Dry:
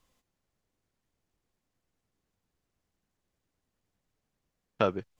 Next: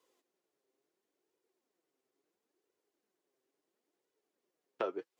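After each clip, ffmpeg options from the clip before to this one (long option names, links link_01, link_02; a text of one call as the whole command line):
ffmpeg -i in.wav -filter_complex "[0:a]flanger=delay=2:depth=5.7:regen=40:speed=0.73:shape=sinusoidal,acrossover=split=600|1700[link_01][link_02][link_03];[link_01]acompressor=threshold=-46dB:ratio=4[link_04];[link_02]acompressor=threshold=-39dB:ratio=4[link_05];[link_03]acompressor=threshold=-52dB:ratio=4[link_06];[link_04][link_05][link_06]amix=inputs=3:normalize=0,highpass=frequency=370:width_type=q:width=3.8" out.wav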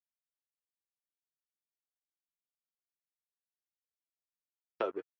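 ffmpeg -i in.wav -af "aeval=exprs='sgn(val(0))*max(abs(val(0))-0.00168,0)':channel_layout=same,afftdn=noise_reduction=16:noise_floor=-62,volume=2dB" out.wav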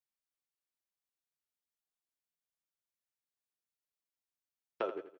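ffmpeg -i in.wav -af "aecho=1:1:84|168|252|336:0.251|0.0955|0.0363|0.0138,volume=-2dB" out.wav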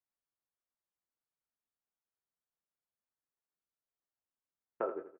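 ffmpeg -i in.wav -filter_complex "[0:a]lowpass=frequency=1600:width=0.5412,lowpass=frequency=1600:width=1.3066,asplit=2[link_01][link_02];[link_02]adelay=23,volume=-9dB[link_03];[link_01][link_03]amix=inputs=2:normalize=0" out.wav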